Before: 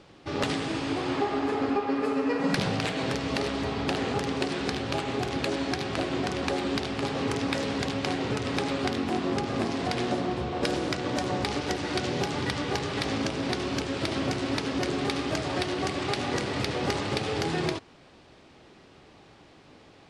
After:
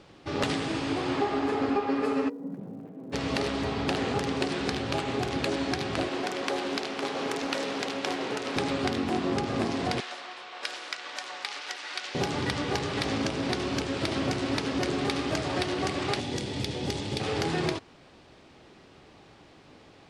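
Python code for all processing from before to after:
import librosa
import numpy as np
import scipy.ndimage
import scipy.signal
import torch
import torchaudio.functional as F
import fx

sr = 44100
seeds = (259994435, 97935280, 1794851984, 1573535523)

y = fx.ladder_bandpass(x, sr, hz=260.0, resonance_pct=35, at=(2.28, 3.12), fade=0.02)
y = fx.dmg_crackle(y, sr, seeds[0], per_s=180.0, level_db=-56.0, at=(2.28, 3.12), fade=0.02)
y = fx.chain(y, sr, fx.highpass(hz=310.0, slope=12),
    fx.doppler_dist(depth_ms=0.28), at=(6.08, 8.56))
y = fx.chain(y, sr, fx.highpass(hz=1300.0, slope=12),
    fx.high_shelf(hz=7800.0, db=-7.5), at=(10.0, 12.15))
y = fx.chain(y, sr, fx.peak_eq(hz=1100.0, db=-14.5, octaves=1.8),
    fx.small_body(hz=(890.0, 3400.0), ring_ms=20, db=8), at=(16.2, 17.2))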